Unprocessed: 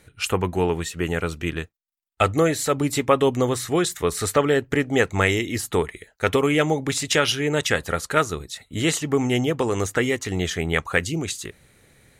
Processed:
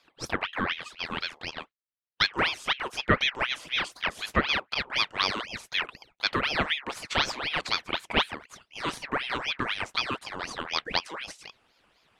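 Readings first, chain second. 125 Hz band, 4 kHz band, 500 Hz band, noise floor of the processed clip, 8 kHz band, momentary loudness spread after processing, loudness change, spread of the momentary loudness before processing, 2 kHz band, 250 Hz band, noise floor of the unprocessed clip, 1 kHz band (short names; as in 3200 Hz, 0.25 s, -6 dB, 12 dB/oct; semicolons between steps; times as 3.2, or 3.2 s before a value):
-14.5 dB, +1.0 dB, -15.0 dB, -76 dBFS, -15.5 dB, 10 LU, -6.0 dB, 8 LU, -2.5 dB, -13.5 dB, -65 dBFS, -4.5 dB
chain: band-pass 1000 Hz, Q 0.78; ring modulator with a swept carrier 1800 Hz, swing 65%, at 4 Hz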